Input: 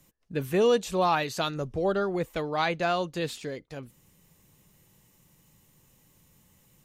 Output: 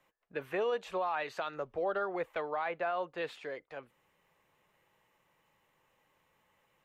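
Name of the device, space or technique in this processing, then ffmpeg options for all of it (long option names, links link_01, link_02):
DJ mixer with the lows and highs turned down: -filter_complex "[0:a]asettb=1/sr,asplit=3[link_01][link_02][link_03];[link_01]atrim=end=2.564[link_04];[link_02]atrim=start=2.56:end=3.18,asetpts=PTS-STARTPTS,afade=type=in:duration=0.004:curve=qsin,afade=type=out:start_time=0.616:duration=0.004:curve=qsin,highshelf=frequency=3000:gain=-9[link_05];[link_03]atrim=start=3.176[link_06];[link_04][link_05]acrossfade=duration=0.004:curve1=hsin:curve2=qsin[link_07];[link_07][link_06]acrossfade=duration=0.004:curve1=qsin:curve2=hsin,acrossover=split=480 2700:gain=0.0891 1 0.0794[link_08][link_09][link_10];[link_08][link_09][link_10]amix=inputs=3:normalize=0,alimiter=level_in=2dB:limit=-24dB:level=0:latency=1:release=75,volume=-2dB,volume=1dB"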